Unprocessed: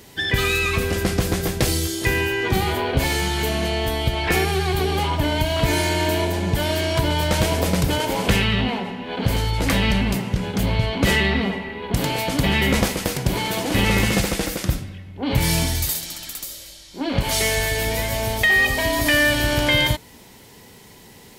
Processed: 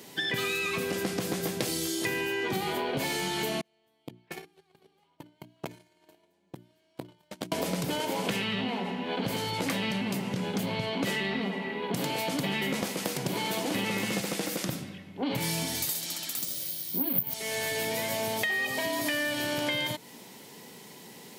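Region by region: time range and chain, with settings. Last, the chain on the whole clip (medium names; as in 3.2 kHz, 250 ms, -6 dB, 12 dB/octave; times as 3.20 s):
3.61–7.52 s: gate -16 dBFS, range -44 dB + hum notches 60/120/180/240/300/360 Hz + transformer saturation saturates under 530 Hz
16.37–17.34 s: tone controls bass +14 dB, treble +2 dB + careless resampling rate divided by 3×, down filtered, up zero stuff
whole clip: high-pass 150 Hz 24 dB/octave; peaking EQ 1.6 kHz -2 dB; compression, threshold -26 dBFS; trim -1.5 dB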